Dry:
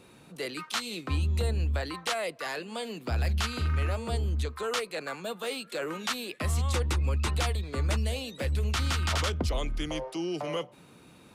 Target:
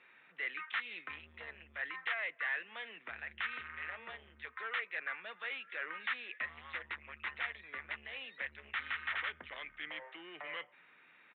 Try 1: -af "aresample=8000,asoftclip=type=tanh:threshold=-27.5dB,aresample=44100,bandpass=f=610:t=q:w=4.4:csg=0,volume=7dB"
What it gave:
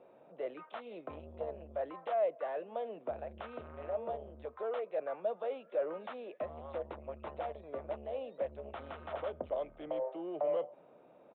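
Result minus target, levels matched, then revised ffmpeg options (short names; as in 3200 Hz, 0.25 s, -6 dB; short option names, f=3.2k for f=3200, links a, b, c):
2000 Hz band -18.5 dB
-af "aresample=8000,asoftclip=type=tanh:threshold=-27.5dB,aresample=44100,bandpass=f=1.9k:t=q:w=4.4:csg=0,volume=7dB"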